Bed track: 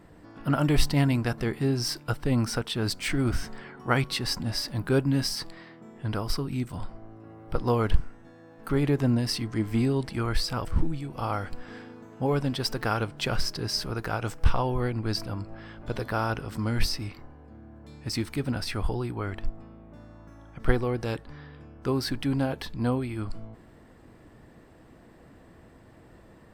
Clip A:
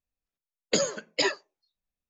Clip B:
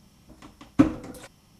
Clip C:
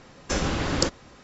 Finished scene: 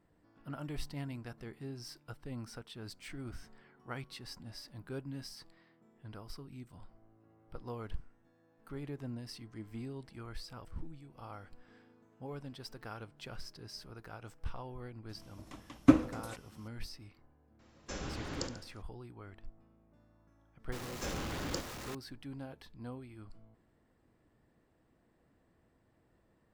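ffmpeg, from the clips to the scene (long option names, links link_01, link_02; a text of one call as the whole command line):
ffmpeg -i bed.wav -i cue0.wav -i cue1.wav -i cue2.wav -filter_complex "[3:a]asplit=2[link_01][link_02];[0:a]volume=-18.5dB[link_03];[link_01]aecho=1:1:70|140|210|280|350|420:0.299|0.155|0.0807|0.042|0.0218|0.0114[link_04];[link_02]aeval=exprs='val(0)+0.5*0.0708*sgn(val(0))':channel_layout=same[link_05];[2:a]atrim=end=1.59,asetpts=PTS-STARTPTS,volume=-3.5dB,afade=type=in:duration=0.004:curve=hsin,afade=type=out:start_time=1.586:duration=0.004:curve=hsin,adelay=15090[link_06];[link_04]atrim=end=1.23,asetpts=PTS-STARTPTS,volume=-16dB,afade=type=in:duration=0.004:curve=hsin,afade=type=out:start_time=1.226:duration=0.004:curve=hsin,adelay=17590[link_07];[link_05]atrim=end=1.23,asetpts=PTS-STARTPTS,volume=-16.5dB,afade=type=in:duration=0.004:curve=hsin,afade=type=out:start_time=1.226:duration=0.004:curve=hsin,adelay=20720[link_08];[link_03][link_06][link_07][link_08]amix=inputs=4:normalize=0" out.wav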